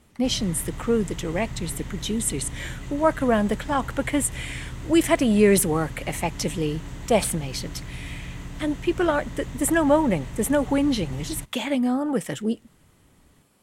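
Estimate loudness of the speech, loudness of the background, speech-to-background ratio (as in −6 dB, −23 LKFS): −24.0 LKFS, −37.5 LKFS, 13.5 dB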